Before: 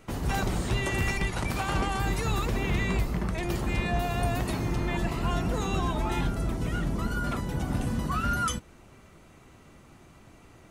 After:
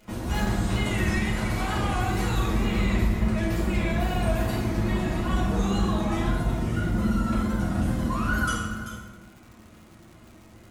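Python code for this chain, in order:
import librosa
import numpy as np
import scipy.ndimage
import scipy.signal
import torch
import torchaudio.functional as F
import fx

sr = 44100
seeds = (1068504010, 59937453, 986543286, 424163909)

y = x + 10.0 ** (-11.5 / 20.0) * np.pad(x, (int(386 * sr / 1000.0), 0))[:len(x)]
y = fx.wow_flutter(y, sr, seeds[0], rate_hz=2.1, depth_cents=110.0)
y = fx.rev_fdn(y, sr, rt60_s=1.2, lf_ratio=1.2, hf_ratio=0.65, size_ms=28.0, drr_db=-6.5)
y = fx.dmg_crackle(y, sr, seeds[1], per_s=260.0, level_db=-38.0)
y = y * librosa.db_to_amplitude(-6.5)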